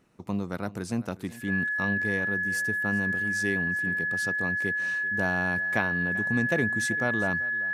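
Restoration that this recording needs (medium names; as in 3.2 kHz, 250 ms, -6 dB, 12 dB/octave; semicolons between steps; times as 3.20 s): band-stop 1.7 kHz, Q 30; inverse comb 389 ms -19 dB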